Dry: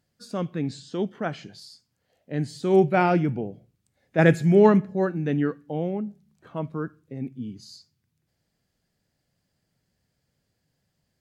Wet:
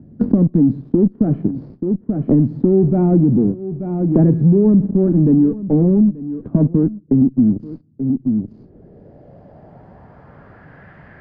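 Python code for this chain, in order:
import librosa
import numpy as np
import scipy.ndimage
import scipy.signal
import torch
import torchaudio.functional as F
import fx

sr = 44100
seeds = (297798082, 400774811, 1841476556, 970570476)

p1 = fx.low_shelf(x, sr, hz=280.0, db=-6.0)
p2 = fx.notch(p1, sr, hz=510.0, q=16.0)
p3 = fx.fuzz(p2, sr, gain_db=44.0, gate_db=-45.0)
p4 = p2 + F.gain(torch.from_numpy(p3), -10.0).numpy()
p5 = fx.filter_sweep_lowpass(p4, sr, from_hz=260.0, to_hz=1700.0, start_s=8.13, end_s=10.9, q=2.1)
p6 = p5 + fx.echo_single(p5, sr, ms=883, db=-21.5, dry=0)
p7 = fx.band_squash(p6, sr, depth_pct=100)
y = F.gain(torch.from_numpy(p7), 6.0).numpy()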